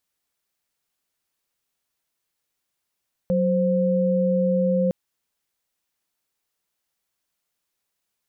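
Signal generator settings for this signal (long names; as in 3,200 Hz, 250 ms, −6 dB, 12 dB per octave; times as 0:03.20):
held notes F#3/C5 sine, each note −20.5 dBFS 1.61 s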